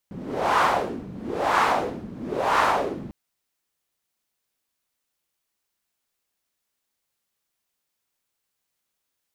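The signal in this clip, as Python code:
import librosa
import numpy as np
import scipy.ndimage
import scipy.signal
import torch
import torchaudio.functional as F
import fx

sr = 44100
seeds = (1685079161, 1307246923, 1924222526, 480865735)

y = fx.wind(sr, seeds[0], length_s=3.0, low_hz=190.0, high_hz=1100.0, q=2.6, gusts=3, swing_db=17)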